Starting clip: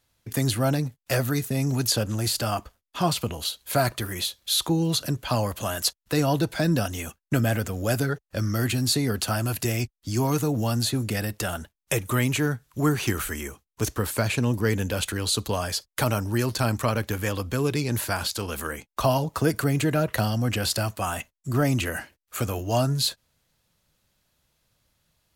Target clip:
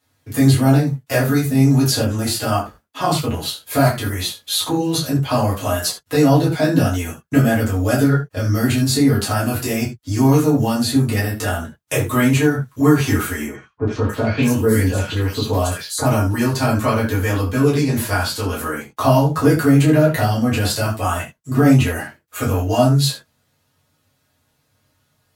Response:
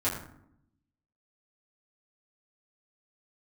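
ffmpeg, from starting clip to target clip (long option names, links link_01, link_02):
-filter_complex "[0:a]highpass=110,asettb=1/sr,asplit=3[link_01][link_02][link_03];[link_01]atrim=end=13.464[link_04];[link_02]atrim=start=13.46:end=16.05,asetpts=PTS-STARTPTS,afade=type=in:duration=0.004:curve=qsin,afade=type=out:start_time=2.586:duration=0.004:curve=qsin,acrossover=split=1400|4500[link_05][link_06][link_07];[link_06]adelay=80[link_08];[link_07]adelay=630[link_09];[link_05][link_08][link_09]amix=inputs=3:normalize=0,atrim=end_sample=114219[link_10];[link_03]atrim=start=16.046[link_11];[link_04][link_10]acrossfade=duration=0.004:curve1=hsin:curve2=qsin[link_12];[link_12][link_11]acrossfade=duration=0.004:curve1=qsin:curve2=hsin[link_13];[1:a]atrim=start_sample=2205,afade=type=out:start_time=0.15:duration=0.01,atrim=end_sample=7056[link_14];[link_13][link_14]afir=irnorm=-1:irlink=0,volume=-1dB"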